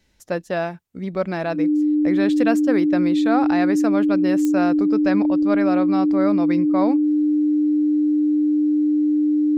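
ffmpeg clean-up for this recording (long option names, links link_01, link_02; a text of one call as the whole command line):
ffmpeg -i in.wav -af "adeclick=threshold=4,bandreject=frequency=300:width=30" out.wav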